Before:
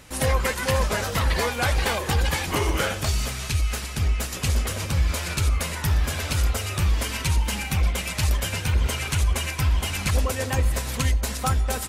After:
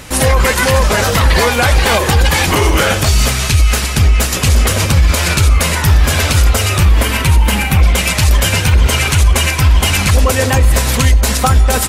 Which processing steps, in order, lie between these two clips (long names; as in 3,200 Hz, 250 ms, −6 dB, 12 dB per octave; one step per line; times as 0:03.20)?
0:06.85–0:07.82: parametric band 5,800 Hz −7.5 dB 1.4 octaves
boost into a limiter +16.5 dB
level −1 dB